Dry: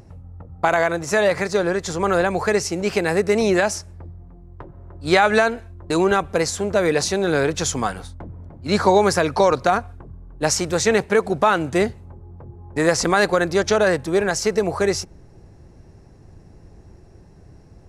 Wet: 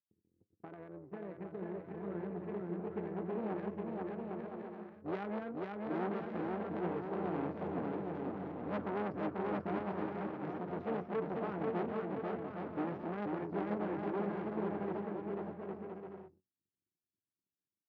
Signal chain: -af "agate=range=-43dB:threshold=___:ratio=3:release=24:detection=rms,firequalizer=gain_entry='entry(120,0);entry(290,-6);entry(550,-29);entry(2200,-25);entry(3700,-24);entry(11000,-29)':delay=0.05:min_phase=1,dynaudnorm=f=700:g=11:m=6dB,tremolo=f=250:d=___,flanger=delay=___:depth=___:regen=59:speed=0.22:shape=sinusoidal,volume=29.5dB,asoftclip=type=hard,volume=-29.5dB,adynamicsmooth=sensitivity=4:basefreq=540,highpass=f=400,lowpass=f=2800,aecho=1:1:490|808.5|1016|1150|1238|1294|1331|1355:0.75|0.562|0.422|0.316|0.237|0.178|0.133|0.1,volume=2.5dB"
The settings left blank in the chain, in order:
-33dB, 0.462, 9.6, 1.6